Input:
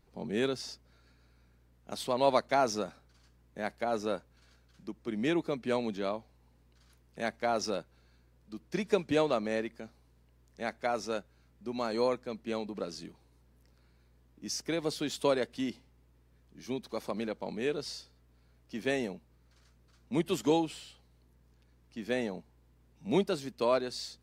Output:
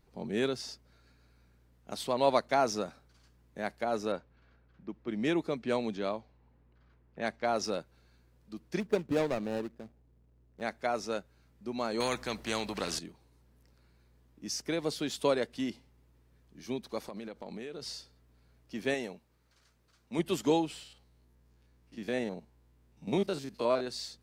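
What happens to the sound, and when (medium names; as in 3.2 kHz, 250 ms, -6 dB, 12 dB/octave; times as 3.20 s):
4.12–7.64 s: level-controlled noise filter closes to 1.8 kHz, open at -27 dBFS
8.80–10.62 s: median filter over 41 samples
12.00–12.99 s: spectrum-flattening compressor 2:1
17.07–17.82 s: compression 12:1, threshold -37 dBFS
18.94–20.19 s: bass shelf 370 Hz -7.5 dB
20.83–23.87 s: spectrogram pixelated in time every 50 ms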